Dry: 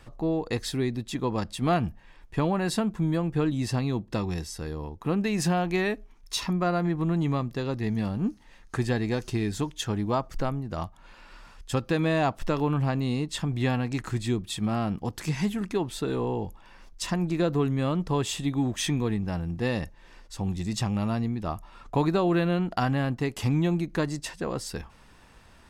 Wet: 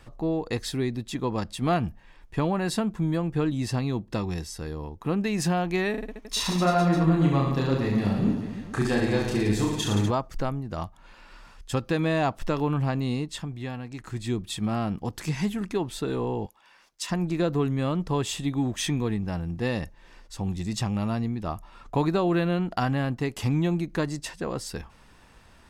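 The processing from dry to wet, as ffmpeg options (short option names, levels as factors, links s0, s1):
-filter_complex "[0:a]asettb=1/sr,asplit=3[s0][s1][s2];[s0]atrim=end=5.914[s3];[s1]atrim=start=5.91:end=10.11,asetpts=PTS-STARTPTS,afade=t=in:d=0.004:c=qsin,afade=t=out:st=4.196:d=0.004:c=qsin,aecho=1:1:30|67.5|114.4|173|246.2|337.8|452.2|595.3:0.794|0.631|0.501|0.398|0.316|0.251|0.2|0.158,atrim=end_sample=185220[s4];[s2]atrim=start=10.106[s5];[s3][s4]acrossfade=d=0.004:c1=hsin:c2=qsin[s6];[s6][s5]acrossfade=d=0.004:c1=qsin:c2=hsin,asettb=1/sr,asplit=3[s7][s8][s9];[s7]atrim=end=16.464[s10];[s8]atrim=start=16.46:end=17.1,asetpts=PTS-STARTPTS,afade=t=in:d=0.004:c=qsin,afade=t=out:st=0.636:d=0.004:c=qsin,highpass=f=1200:p=1[s11];[s9]atrim=start=17.096[s12];[s10][s11]acrossfade=d=0.004:c1=hsin:c2=qsin[s13];[s13][s12]acrossfade=d=0.004:c1=qsin:c2=hsin,asplit=3[s14][s15][s16];[s14]atrim=end=13.57,asetpts=PTS-STARTPTS,afade=t=out:st=13.14:d=0.43:silence=0.375837[s17];[s15]atrim=start=13.57:end=13.98,asetpts=PTS-STARTPTS,volume=0.376[s18];[s16]atrim=start=13.98,asetpts=PTS-STARTPTS,afade=t=in:d=0.43:silence=0.375837[s19];[s17][s18][s19]concat=n=3:v=0:a=1"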